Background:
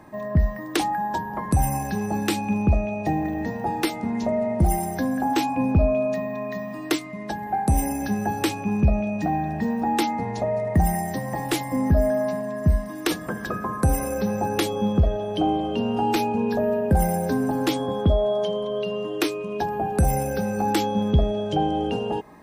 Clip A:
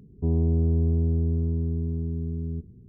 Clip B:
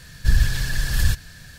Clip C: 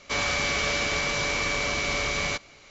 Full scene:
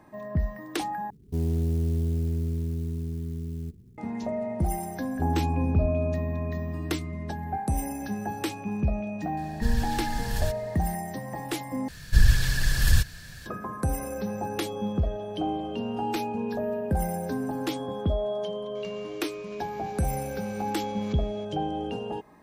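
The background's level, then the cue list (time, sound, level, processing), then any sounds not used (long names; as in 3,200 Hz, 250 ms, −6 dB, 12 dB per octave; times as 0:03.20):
background −7 dB
0:01.10: overwrite with A −3.5 dB + converter with an unsteady clock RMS 0.041 ms
0:04.97: mix in A −3 dB + reverb reduction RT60 0.69 s
0:09.37: mix in B −9 dB
0:11.88: overwrite with B −1 dB + bit reduction 11 bits
0:18.75: mix in C −16.5 dB + compressor whose output falls as the input rises −33 dBFS, ratio −0.5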